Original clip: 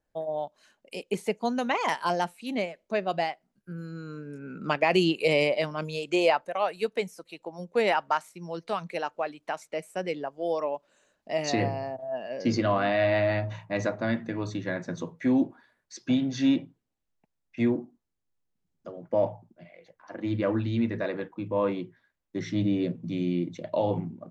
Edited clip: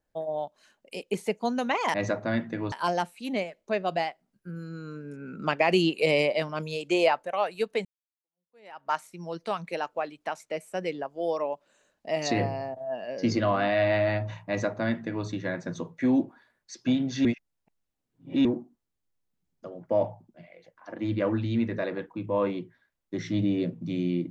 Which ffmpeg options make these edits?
-filter_complex "[0:a]asplit=6[a][b][c][d][e][f];[a]atrim=end=1.942[g];[b]atrim=start=13.698:end=14.482[h];[c]atrim=start=1.938:end=7.07,asetpts=PTS-STARTPTS,afade=t=out:st=5.128:d=0.004:c=hsin[i];[d]atrim=start=7.07:end=16.472,asetpts=PTS-STARTPTS,afade=t=in:d=1.09:c=exp[j];[e]atrim=start=16.468:end=17.672,asetpts=PTS-STARTPTS,areverse[k];[f]atrim=start=17.668[l];[g][h]acrossfade=d=0.004:c1=hsin:c2=hsin[m];[i][j]concat=n=2:v=0:a=1[n];[m][n]acrossfade=d=0.004:c1=hsin:c2=hsin[o];[o][k]acrossfade=d=0.004:c1=hsin:c2=hsin[p];[p][l]acrossfade=d=0.004:c1=hsin:c2=hsin"

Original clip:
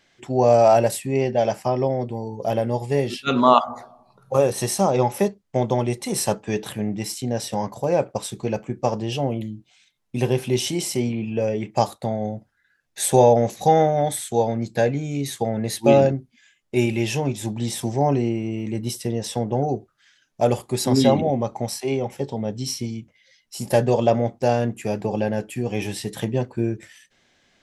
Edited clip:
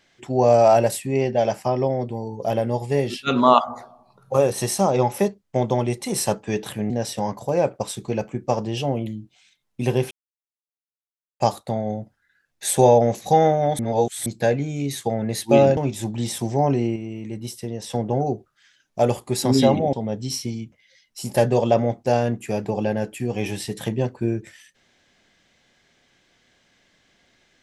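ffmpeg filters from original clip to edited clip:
-filter_complex "[0:a]asplit=10[a][b][c][d][e][f][g][h][i][j];[a]atrim=end=6.902[k];[b]atrim=start=7.248:end=10.46,asetpts=PTS-STARTPTS,afade=t=out:st=3.208:d=0.004:c=hsin[l];[c]atrim=start=10.46:end=11.75,asetpts=PTS-STARTPTS,volume=0[m];[d]atrim=start=11.75:end=14.142,asetpts=PTS-STARTPTS,afade=t=in:d=0.004:c=hsin[n];[e]atrim=start=14.138:end=14.612,asetpts=PTS-STARTPTS,areverse[o];[f]atrim=start=14.608:end=16.122[p];[g]atrim=start=17.188:end=18.382[q];[h]atrim=start=18.378:end=19.322,asetpts=PTS-STARTPTS,volume=-5dB[r];[i]atrim=start=19.318:end=21.352[s];[j]atrim=start=22.288[t];[l][m][n]concat=n=3:v=0:a=1[u];[k][u]acrossfade=d=0.004:c1=hsin:c2=hsin[v];[v][o]acrossfade=d=0.004:c1=hsin:c2=hsin[w];[w][p]acrossfade=d=0.004:c1=hsin:c2=hsin[x];[x][q]acrossfade=d=0.004:c1=hsin:c2=hsin[y];[y][r]acrossfade=d=0.004:c1=hsin:c2=hsin[z];[z][s]acrossfade=d=0.004:c1=hsin:c2=hsin[aa];[aa][t]acrossfade=d=0.004:c1=hsin:c2=hsin"

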